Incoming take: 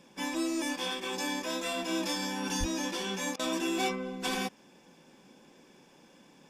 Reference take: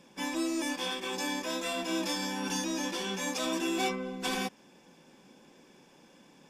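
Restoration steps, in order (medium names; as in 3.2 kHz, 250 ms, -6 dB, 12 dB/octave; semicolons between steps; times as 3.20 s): 2.59–2.71 s: high-pass 140 Hz 24 dB/octave; interpolate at 3.36 s, 32 ms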